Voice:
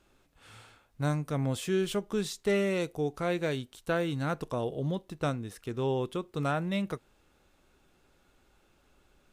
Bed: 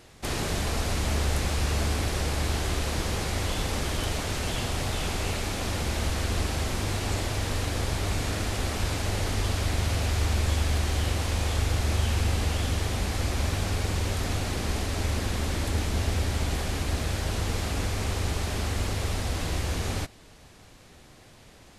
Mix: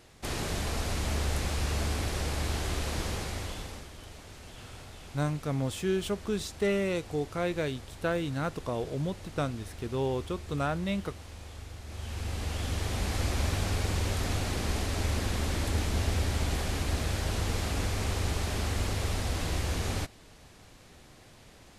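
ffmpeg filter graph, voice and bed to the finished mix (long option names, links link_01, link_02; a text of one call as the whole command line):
ffmpeg -i stem1.wav -i stem2.wav -filter_complex "[0:a]adelay=4150,volume=-0.5dB[link_01];[1:a]volume=12dB,afade=type=out:start_time=3.04:duration=0.85:silence=0.199526,afade=type=in:start_time=11.86:duration=1.3:silence=0.158489[link_02];[link_01][link_02]amix=inputs=2:normalize=0" out.wav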